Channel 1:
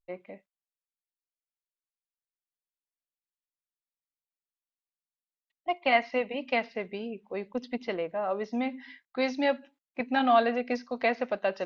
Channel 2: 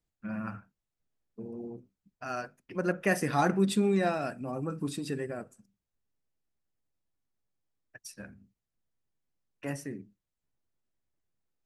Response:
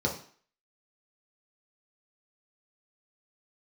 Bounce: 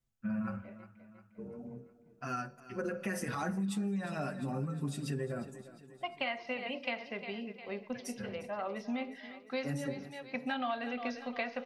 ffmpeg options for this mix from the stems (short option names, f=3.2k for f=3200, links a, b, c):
-filter_complex "[0:a]equalizer=f=3.7k:w=0.41:g=7,adelay=350,volume=-6.5dB,asplit=3[a][b][c];[b]volume=-18dB[d];[c]volume=-16dB[e];[1:a]alimiter=limit=-21dB:level=0:latency=1:release=22,asplit=2[f][g];[g]adelay=5.5,afreqshift=-0.37[h];[f][h]amix=inputs=2:normalize=1,volume=2.5dB,asplit=4[i][j][k][l];[j]volume=-19dB[m];[k]volume=-17.5dB[n];[l]apad=whole_len=529565[o];[a][o]sidechaincompress=threshold=-51dB:ratio=8:attack=16:release=143[p];[2:a]atrim=start_sample=2205[q];[d][m]amix=inputs=2:normalize=0[r];[r][q]afir=irnorm=-1:irlink=0[s];[e][n]amix=inputs=2:normalize=0,aecho=0:1:354|708|1062|1416|1770|2124|2478|2832:1|0.52|0.27|0.141|0.0731|0.038|0.0198|0.0103[t];[p][i][s][t]amix=inputs=4:normalize=0,acompressor=threshold=-32dB:ratio=6"